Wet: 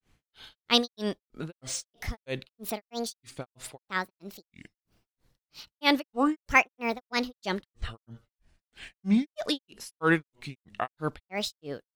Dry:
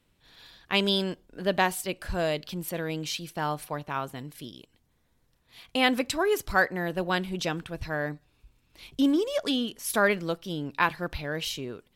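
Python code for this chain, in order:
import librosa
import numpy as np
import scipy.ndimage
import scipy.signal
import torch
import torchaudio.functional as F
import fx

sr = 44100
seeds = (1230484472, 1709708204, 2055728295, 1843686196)

y = fx.granulator(x, sr, seeds[0], grain_ms=237.0, per_s=3.1, spray_ms=25.0, spread_st=7)
y = fx.peak_eq(y, sr, hz=4500.0, db=3.5, octaves=0.52)
y = y * librosa.db_to_amplitude(3.0)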